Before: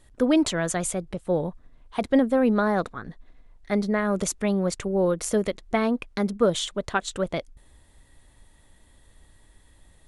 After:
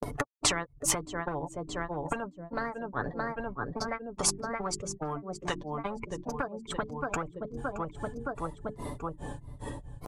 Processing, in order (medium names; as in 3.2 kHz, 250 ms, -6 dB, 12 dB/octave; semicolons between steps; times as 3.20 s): expander on every frequency bin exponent 1.5; low-pass 5.8 kHz 12 dB/octave; bass shelf 230 Hz +7.5 dB; hum notches 50/100/150/200/250/300/350/400 Hz; granulator 243 ms, grains 2.4 per s, spray 27 ms, pitch spread up and down by 3 st; high-pass 70 Hz 6 dB/octave; feedback delay 621 ms, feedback 43%, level -23 dB; in parallel at +2 dB: upward compressor, threshold -33 dBFS; on the sum: graphic EQ 125/250/500/1000/2000/4000 Hz +9/+7/+11/+7/-10/-10 dB; compression 8:1, threshold -23 dBFS, peak gain reduction 25 dB; comb 6.9 ms, depth 45%; spectrum-flattening compressor 10:1